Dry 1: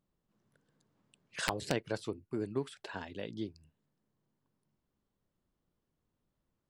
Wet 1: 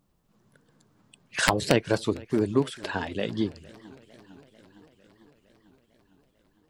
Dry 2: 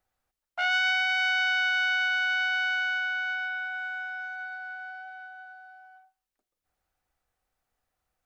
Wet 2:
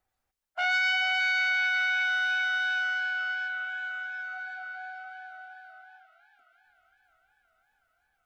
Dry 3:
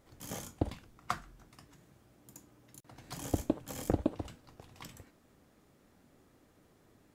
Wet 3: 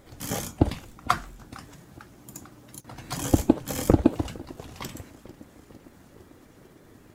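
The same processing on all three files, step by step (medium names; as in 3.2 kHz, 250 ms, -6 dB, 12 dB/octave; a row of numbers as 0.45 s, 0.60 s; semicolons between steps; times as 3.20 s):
coarse spectral quantiser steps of 15 dB; modulated delay 452 ms, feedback 69%, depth 194 cents, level -22.5 dB; normalise loudness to -27 LUFS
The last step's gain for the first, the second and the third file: +12.0 dB, 0.0 dB, +12.0 dB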